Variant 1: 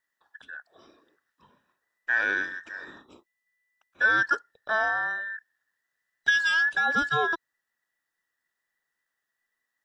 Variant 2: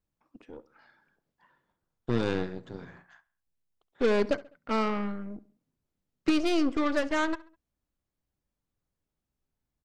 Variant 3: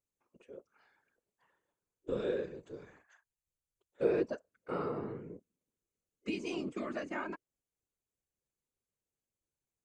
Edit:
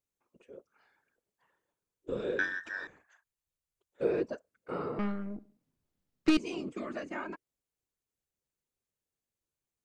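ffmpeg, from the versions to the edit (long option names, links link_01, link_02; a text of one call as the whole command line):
ffmpeg -i take0.wav -i take1.wav -i take2.wav -filter_complex "[2:a]asplit=3[link_01][link_02][link_03];[link_01]atrim=end=2.392[link_04];[0:a]atrim=start=2.388:end=2.872[link_05];[link_02]atrim=start=2.868:end=4.992[link_06];[1:a]atrim=start=4.988:end=6.372[link_07];[link_03]atrim=start=6.368[link_08];[link_04][link_05]acrossfade=duration=0.004:curve1=hsin:curve2=hsin[link_09];[link_09][link_06]acrossfade=duration=0.004:curve1=hsin:curve2=hsin[link_10];[link_10][link_07]acrossfade=duration=0.004:curve1=hsin:curve2=hsin[link_11];[link_11][link_08]acrossfade=duration=0.004:curve1=hsin:curve2=hsin" out.wav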